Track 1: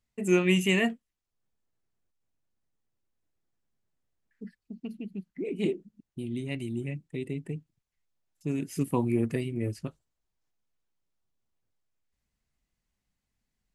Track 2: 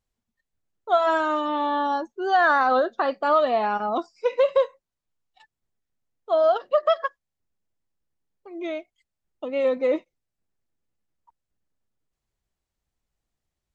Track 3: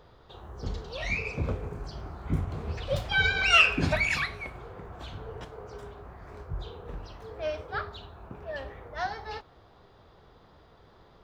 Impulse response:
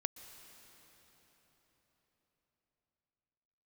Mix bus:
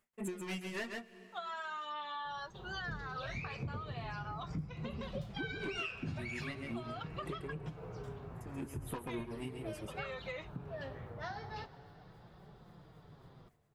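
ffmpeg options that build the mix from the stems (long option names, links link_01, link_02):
-filter_complex "[0:a]equalizer=frequency=4600:width=0.83:gain=-14.5,asplit=2[link_01][link_02];[link_02]highpass=frequency=720:poles=1,volume=26dB,asoftclip=type=tanh:threshold=-12dB[link_03];[link_01][link_03]amix=inputs=2:normalize=0,lowpass=frequency=7900:poles=1,volume=-6dB,aeval=exprs='val(0)*pow(10,-24*(0.5-0.5*cos(2*PI*3.7*n/s))/20)':channel_layout=same,volume=-3dB,asplit=3[link_04][link_05][link_06];[link_05]volume=-13.5dB[link_07];[link_06]volume=-5dB[link_08];[1:a]dynaudnorm=framelen=220:gausssize=11:maxgain=11.5dB,highpass=1500,acompressor=threshold=-23dB:ratio=6,adelay=450,volume=-6.5dB[link_09];[2:a]equalizer=frequency=150:width=1.1:gain=12.5,adelay=2250,volume=-5.5dB,asplit=2[link_10][link_11];[link_11]volume=-5dB[link_12];[3:a]atrim=start_sample=2205[link_13];[link_07][link_12]amix=inputs=2:normalize=0[link_14];[link_14][link_13]afir=irnorm=-1:irlink=0[link_15];[link_08]aecho=0:1:135:1[link_16];[link_04][link_09][link_10][link_15][link_16]amix=inputs=5:normalize=0,flanger=delay=5:depth=4.1:regen=-32:speed=0.4:shape=triangular,acompressor=threshold=-39dB:ratio=5"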